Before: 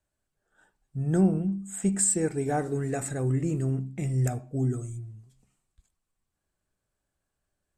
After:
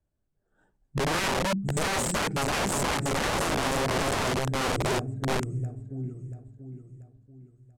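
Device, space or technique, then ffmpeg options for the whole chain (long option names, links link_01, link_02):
overflowing digital effects unit: -filter_complex "[0:a]asplit=3[link_01][link_02][link_03];[link_01]afade=type=out:start_time=0.98:duration=0.02[link_04];[link_02]highpass=frequency=86:width=0.5412,highpass=frequency=86:width=1.3066,afade=type=in:start_time=0.98:duration=0.02,afade=type=out:start_time=1.54:duration=0.02[link_05];[link_03]afade=type=in:start_time=1.54:duration=0.02[link_06];[link_04][link_05][link_06]amix=inputs=3:normalize=0,tiltshelf=frequency=740:gain=8,aecho=1:1:686|1372|2058|2744|3430:0.631|0.252|0.101|0.0404|0.0162,aeval=exprs='(mod(9.44*val(0)+1,2)-1)/9.44':channel_layout=same,lowpass=10000,volume=-2.5dB"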